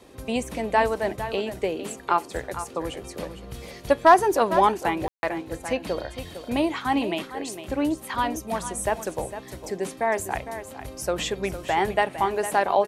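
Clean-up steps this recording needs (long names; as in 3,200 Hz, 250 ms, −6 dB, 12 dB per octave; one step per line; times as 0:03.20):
ambience match 0:05.08–0:05.23
echo removal 456 ms −11.5 dB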